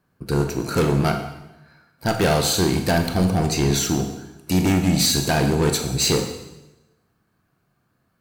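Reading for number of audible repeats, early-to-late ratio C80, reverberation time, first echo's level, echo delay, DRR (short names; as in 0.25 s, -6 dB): none, 9.0 dB, 1.0 s, none, none, 5.0 dB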